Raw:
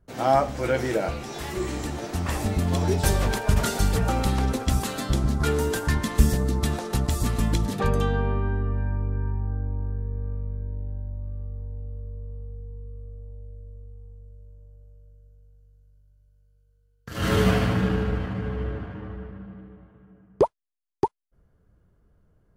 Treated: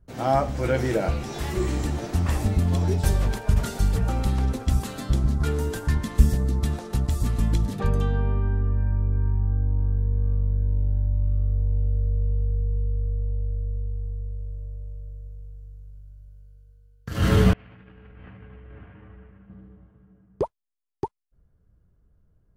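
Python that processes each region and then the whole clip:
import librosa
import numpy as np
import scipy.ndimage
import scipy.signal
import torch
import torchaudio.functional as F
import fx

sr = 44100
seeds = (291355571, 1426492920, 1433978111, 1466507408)

y = fx.chain(x, sr, fx.low_shelf(hz=370.0, db=-6.0),
    fx.over_compress(threshold_db=-36.0, ratio=-1.0),
    fx.ladder_lowpass(hz=3000.0, resonance_pct=45), at=(17.53, 19.5))
y = fx.low_shelf(y, sr, hz=180.0, db=9.5)
y = fx.rider(y, sr, range_db=10, speed_s=2.0)
y = F.gain(torch.from_numpy(y), -4.5).numpy()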